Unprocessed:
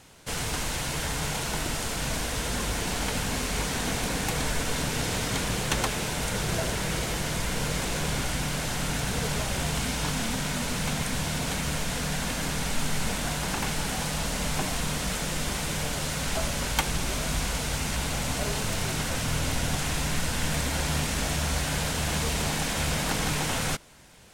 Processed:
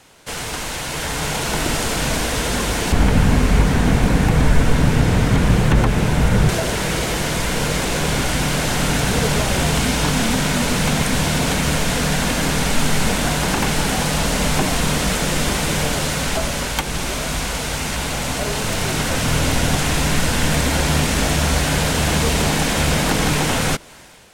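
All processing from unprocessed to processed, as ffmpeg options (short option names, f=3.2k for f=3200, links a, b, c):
-filter_complex "[0:a]asettb=1/sr,asplit=3[a][b][c];[a]atrim=end=2.924[d];[b]atrim=start=2.92:end=6.49,asetpts=PTS-STARTPTS,afade=t=in:d=0.004:c=qsin,afade=t=out:st=3.566:d=0.004:c=qsin,acrossover=split=2500[e][f];[f]acompressor=threshold=-40dB:ratio=4:attack=1:release=60[g];[e][g]amix=inputs=2:normalize=0,bass=f=250:g=12,treble=f=4k:g=1[h];[c]atrim=start=6.486[i];[d][h]acrossfade=d=0.004:c1=hsin:c2=qsin[j];[j][i]acrossfade=d=0.004:c1=qsin:c2=hsin,dynaudnorm=f=880:g=3:m=11.5dB,bass=f=250:g=-6,treble=f=4k:g=-2,acrossover=split=420[k][l];[l]acompressor=threshold=-29dB:ratio=2[m];[k][m]amix=inputs=2:normalize=0,volume=5dB"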